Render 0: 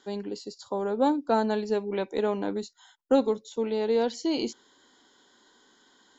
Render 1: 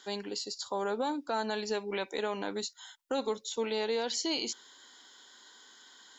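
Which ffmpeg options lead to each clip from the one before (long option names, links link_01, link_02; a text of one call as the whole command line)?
ffmpeg -i in.wav -af "tiltshelf=frequency=760:gain=-8,alimiter=limit=-22.5dB:level=0:latency=1:release=102" out.wav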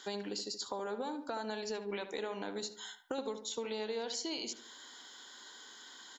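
ffmpeg -i in.wav -filter_complex "[0:a]acompressor=threshold=-40dB:ratio=5,asplit=2[link_01][link_02];[link_02]adelay=74,lowpass=frequency=2000:poles=1,volume=-9dB,asplit=2[link_03][link_04];[link_04]adelay=74,lowpass=frequency=2000:poles=1,volume=0.45,asplit=2[link_05][link_06];[link_06]adelay=74,lowpass=frequency=2000:poles=1,volume=0.45,asplit=2[link_07][link_08];[link_08]adelay=74,lowpass=frequency=2000:poles=1,volume=0.45,asplit=2[link_09][link_10];[link_10]adelay=74,lowpass=frequency=2000:poles=1,volume=0.45[link_11];[link_03][link_05][link_07][link_09][link_11]amix=inputs=5:normalize=0[link_12];[link_01][link_12]amix=inputs=2:normalize=0,volume=3dB" out.wav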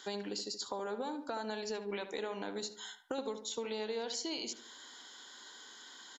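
ffmpeg -i in.wav -af "aresample=32000,aresample=44100" out.wav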